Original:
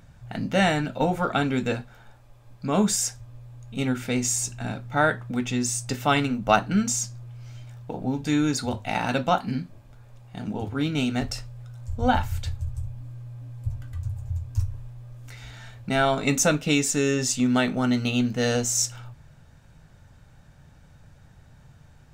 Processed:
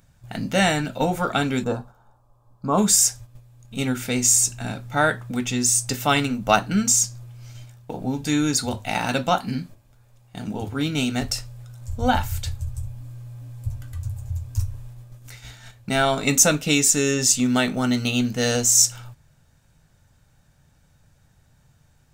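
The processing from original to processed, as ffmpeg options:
ffmpeg -i in.wav -filter_complex "[0:a]asplit=3[link_01][link_02][link_03];[link_01]afade=type=out:start_time=1.63:duration=0.02[link_04];[link_02]highshelf=frequency=1500:width_type=q:width=3:gain=-10.5,afade=type=in:start_time=1.63:duration=0.02,afade=type=out:start_time=2.77:duration=0.02[link_05];[link_03]afade=type=in:start_time=2.77:duration=0.02[link_06];[link_04][link_05][link_06]amix=inputs=3:normalize=0,agate=range=-8dB:threshold=-41dB:ratio=16:detection=peak,highshelf=frequency=5100:gain=11.5,volume=1dB" out.wav

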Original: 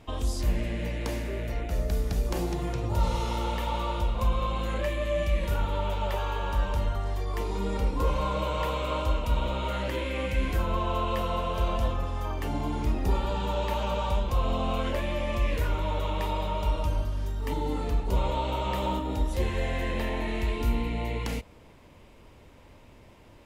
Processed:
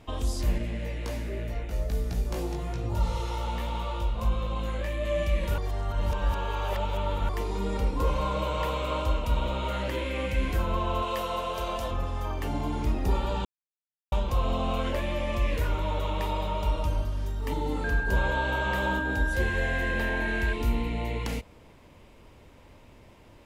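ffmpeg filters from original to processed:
ffmpeg -i in.wav -filter_complex "[0:a]asettb=1/sr,asplit=3[link_01][link_02][link_03];[link_01]atrim=end=0.584[link_04];[link_02]atrim=start=0.58:end=5.05,asetpts=PTS-STARTPTS,afade=type=in:duration=0.004:curve=qsin,afade=type=out:start_time=4.466:duration=0.004:curve=qsin,flanger=delay=17.5:depth=2:speed=1.3[link_05];[link_03]atrim=start=5.046[link_06];[link_04][link_05]acrossfade=duration=0.004:curve1=hsin:curve2=qsin[link_07];[link_07][link_06]acrossfade=duration=0.004:curve1=qsin:curve2=hsin,asettb=1/sr,asplit=3[link_08][link_09][link_10];[link_08]atrim=end=11.024[link_11];[link_09]atrim=start=11.02:end=11.91,asetpts=PTS-STARTPTS,afade=type=in:duration=0.004:curve=qsin,afade=type=out:start_time=0.886:duration=0.004:curve=qsin,bass=frequency=250:gain=-10,treble=frequency=4000:gain=5[link_12];[link_10]atrim=start=11.906[link_13];[link_11][link_12]acrossfade=duration=0.004:curve1=hsin:curve2=qsin[link_14];[link_14][link_13]acrossfade=duration=0.004:curve1=qsin:curve2=hsin,asettb=1/sr,asplit=3[link_15][link_16][link_17];[link_15]atrim=end=17.844[link_18];[link_16]atrim=start=17.84:end=20.53,asetpts=PTS-STARTPTS,afade=type=in:duration=0.004:curve=qsin,afade=type=out:start_time=2.686:duration=0.004:curve=qsin,aeval=exprs='val(0)+0.0316*sin(2*PI*1600*n/s)':channel_layout=same[link_19];[link_17]atrim=start=20.526[link_20];[link_18][link_19]acrossfade=duration=0.004:curve1=hsin:curve2=qsin[link_21];[link_21][link_20]acrossfade=duration=0.004:curve1=qsin:curve2=hsin,asplit=5[link_22][link_23][link_24][link_25][link_26];[link_22]atrim=end=5.582[link_27];[link_23]atrim=start=5.578:end=7.292,asetpts=PTS-STARTPTS,areverse[link_28];[link_24]atrim=start=7.288:end=13.45,asetpts=PTS-STARTPTS,afade=type=out:start_time=6.158:duration=0.004:curve=hsin[link_29];[link_25]atrim=start=13.45:end=14.12,asetpts=PTS-STARTPTS,volume=0[link_30];[link_26]atrim=start=14.12,asetpts=PTS-STARTPTS,afade=type=in:duration=0.004:curve=hsin[link_31];[link_27][link_28]acrossfade=duration=0.004:curve1=hsin:curve2=hsin[link_32];[link_29][link_30][link_31]concat=n=3:v=0:a=1[link_33];[link_32][link_33]acrossfade=duration=0.004:curve1=hsin:curve2=hsin" out.wav

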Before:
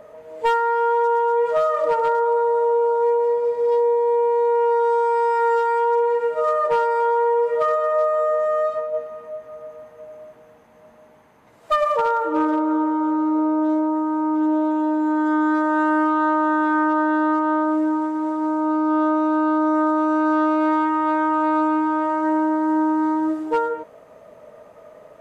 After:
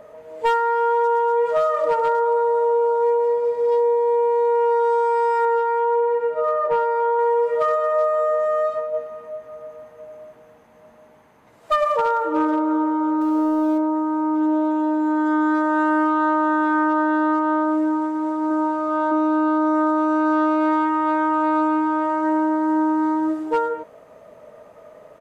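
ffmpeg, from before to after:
ffmpeg -i in.wav -filter_complex "[0:a]asettb=1/sr,asplit=3[link_01][link_02][link_03];[link_01]atrim=end=5.454[link_04];[link_02]atrim=start=5.45:end=7.19,asetpts=PTS-STARTPTS,afade=type=in:duration=0.004:curve=qsin,afade=type=out:start_time=1.736:duration=0.004:curve=qsin,lowpass=frequency=1700:poles=1[link_05];[link_03]atrim=start=7.186[link_06];[link_04][link_05]acrossfade=duration=0.004:curve1=hsin:curve2=qsin[link_07];[link_07][link_06]acrossfade=duration=0.004:curve1=qsin:curve2=hsin,asettb=1/sr,asplit=3[link_08][link_09][link_10];[link_08]atrim=end=13.214[link_11];[link_09]atrim=start=13.21:end=13.78,asetpts=PTS-STARTPTS,afade=type=in:duration=0.004:curve=qsin,afade=type=out:start_time=0.566:duration=0.004:curve=qsin,aeval=exprs='val(0)+0.5*0.0106*sgn(val(0))':channel_layout=same[link_12];[link_10]atrim=start=13.776[link_13];[link_11][link_12]acrossfade=duration=0.004:curve1=hsin:curve2=qsin[link_14];[link_14][link_13]acrossfade=duration=0.004:curve1=qsin:curve2=hsin,asplit=2[link_15][link_16];[link_16]afade=type=in:start_time=18.14:duration=0.01,afade=type=out:start_time=18.75:duration=0.01,aecho=0:1:360|720|1080:0.749894|0.112484|0.0168726[link_17];[link_15][link_17]amix=inputs=2:normalize=0" out.wav

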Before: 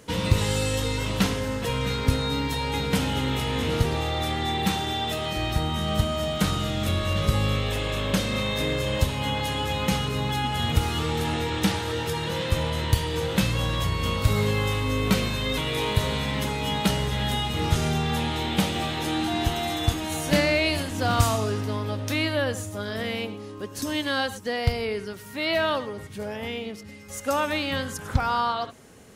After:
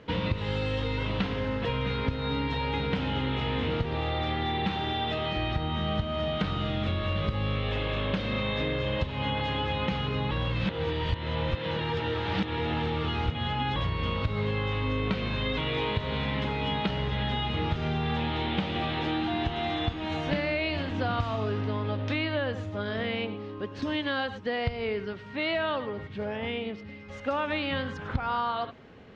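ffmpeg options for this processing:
ffmpeg -i in.wav -filter_complex "[0:a]asplit=3[link_01][link_02][link_03];[link_01]atrim=end=10.312[link_04];[link_02]atrim=start=10.308:end=13.762,asetpts=PTS-STARTPTS,areverse[link_05];[link_03]atrim=start=13.758[link_06];[link_04][link_05]acrossfade=duration=0.004:curve1=hsin:curve2=hsin[link_07];[link_07][link_06]acrossfade=duration=0.004:curve1=hsin:curve2=hsin,lowpass=frequency=3600:width=0.5412,lowpass=frequency=3600:width=1.3066,acompressor=threshold=-25dB:ratio=6" out.wav

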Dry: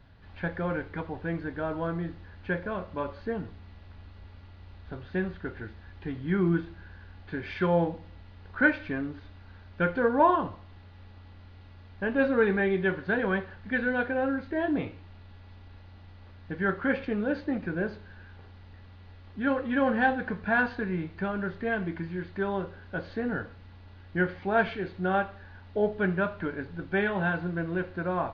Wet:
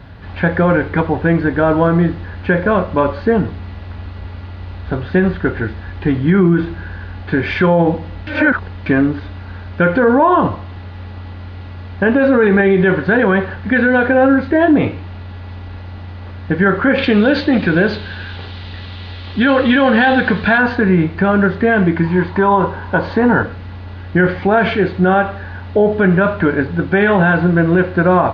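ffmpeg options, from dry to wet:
ffmpeg -i in.wav -filter_complex "[0:a]asettb=1/sr,asplit=3[link_01][link_02][link_03];[link_01]atrim=end=16.984[link_04];[link_02]atrim=start=16.98:end=20.58,asetpts=PTS-STARTPTS,afade=type=in:duration=0.004:curve=qsin,afade=type=out:start_time=3.596:duration=0.004:curve=qsin,equalizer=frequency=3700:width_type=o:width=1.3:gain=14.5[link_05];[link_03]atrim=start=20.576[link_06];[link_04][link_05]acrossfade=duration=0.004:curve1=hsin:curve2=qsin[link_07];[link_07][link_06]acrossfade=duration=0.004:curve1=qsin:curve2=hsin,asettb=1/sr,asplit=3[link_08][link_09][link_10];[link_08]atrim=end=22.044[link_11];[link_09]atrim=start=22.04:end=23.43,asetpts=PTS-STARTPTS,afade=type=in:duration=0.004:curve=qsin,afade=type=out:start_time=1.386:duration=0.004:curve=qsin,equalizer=frequency=950:width_type=o:width=0.35:gain=14.5[link_12];[link_10]atrim=start=23.426[link_13];[link_11][link_12]acrossfade=duration=0.004:curve1=hsin:curve2=qsin[link_14];[link_14][link_13]acrossfade=duration=0.004:curve1=qsin:curve2=hsin,asplit=3[link_15][link_16][link_17];[link_15]atrim=end=8.272[link_18];[link_16]atrim=start=8.268:end=8.862,asetpts=PTS-STARTPTS,areverse[link_19];[link_17]atrim=start=8.858[link_20];[link_18][link_19]acrossfade=duration=0.004:curve1=hsin:curve2=hsin[link_21];[link_21][link_20]acrossfade=duration=0.004:curve1=hsin:curve2=hsin,highpass=44,highshelf=frequency=3900:gain=-7.5,alimiter=level_in=23dB:limit=-1dB:release=50:level=0:latency=1,volume=-3dB" out.wav

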